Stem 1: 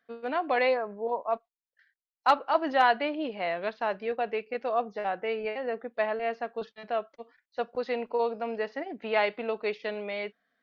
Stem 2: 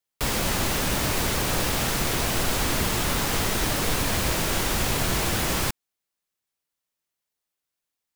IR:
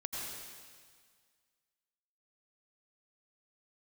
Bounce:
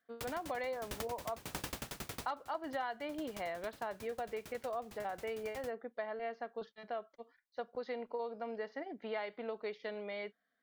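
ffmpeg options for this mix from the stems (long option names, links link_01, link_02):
-filter_complex "[0:a]bandreject=frequency=2600:width=6.4,volume=-7dB,asplit=2[link_01][link_02];[1:a]highpass=51,aeval=exprs='val(0)*pow(10,-28*if(lt(mod(11*n/s,1),2*abs(11)/1000),1-mod(11*n/s,1)/(2*abs(11)/1000),(mod(11*n/s,1)-2*abs(11)/1000)/(1-2*abs(11)/1000))/20)':channel_layout=same,volume=-2.5dB,afade=type=out:start_time=1.4:duration=0.44:silence=0.354813[link_03];[link_02]apad=whole_len=359560[link_04];[link_03][link_04]sidechaincompress=threshold=-47dB:ratio=10:attack=16:release=213[link_05];[link_01][link_05]amix=inputs=2:normalize=0,acompressor=threshold=-36dB:ratio=5"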